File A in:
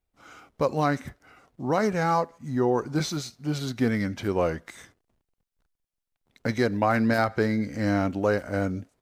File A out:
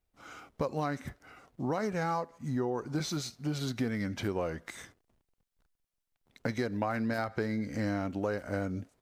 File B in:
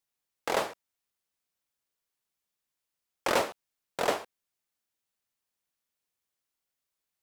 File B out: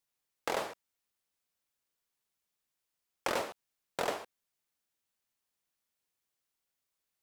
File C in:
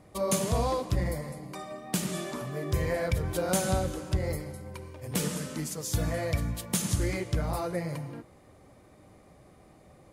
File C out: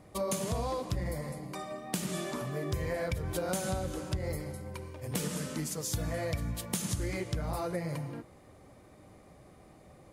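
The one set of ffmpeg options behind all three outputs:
ffmpeg -i in.wav -af "acompressor=threshold=-30dB:ratio=4" out.wav

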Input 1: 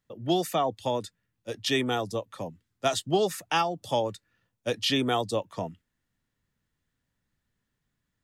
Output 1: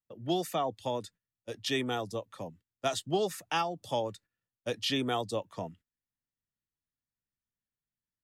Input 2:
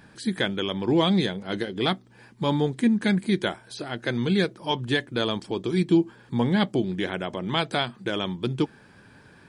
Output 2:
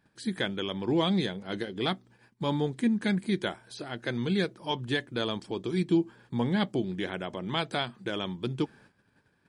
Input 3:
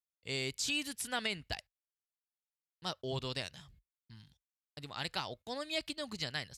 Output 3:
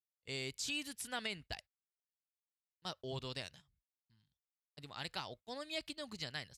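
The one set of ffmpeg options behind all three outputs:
ffmpeg -i in.wav -af "agate=range=-14dB:threshold=-49dB:ratio=16:detection=peak,volume=-5dB" out.wav

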